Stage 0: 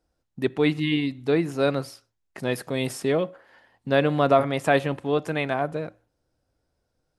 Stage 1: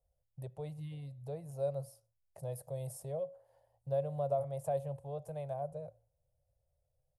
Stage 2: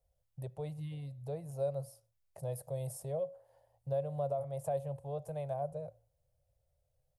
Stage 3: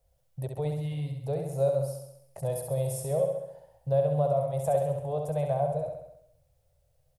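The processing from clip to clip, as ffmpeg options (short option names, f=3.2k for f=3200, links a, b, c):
-af "acompressor=threshold=-35dB:ratio=1.5,firequalizer=gain_entry='entry(140,0);entry(210,-29);entry(310,-28);entry(550,0);entry(1300,-25);entry(1800,-28);entry(9700,-2)':delay=0.05:min_phase=1,volume=-3dB"
-af "alimiter=level_in=3.5dB:limit=-24dB:level=0:latency=1:release=350,volume=-3.5dB,volume=2dB"
-af "aecho=1:1:67|134|201|268|335|402|469|536:0.562|0.321|0.183|0.104|0.0594|0.0338|0.0193|0.011,volume=8dB"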